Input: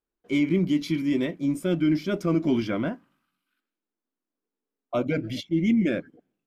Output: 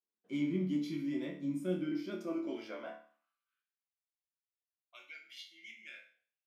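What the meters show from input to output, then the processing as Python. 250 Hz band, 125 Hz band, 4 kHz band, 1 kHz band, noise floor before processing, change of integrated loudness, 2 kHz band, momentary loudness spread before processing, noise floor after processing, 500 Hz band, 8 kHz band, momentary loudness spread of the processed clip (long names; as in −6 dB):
−13.5 dB, −15.0 dB, −12.5 dB, −14.5 dB, below −85 dBFS, −12.0 dB, −13.5 dB, 7 LU, below −85 dBFS, −13.5 dB, can't be measured, 17 LU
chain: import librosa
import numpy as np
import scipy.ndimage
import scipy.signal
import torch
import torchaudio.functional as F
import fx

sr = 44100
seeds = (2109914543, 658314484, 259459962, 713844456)

y = fx.resonator_bank(x, sr, root=38, chord='major', decay_s=0.47)
y = fx.filter_sweep_highpass(y, sr, from_hz=160.0, to_hz=2200.0, start_s=1.6, end_s=4.06, q=1.4)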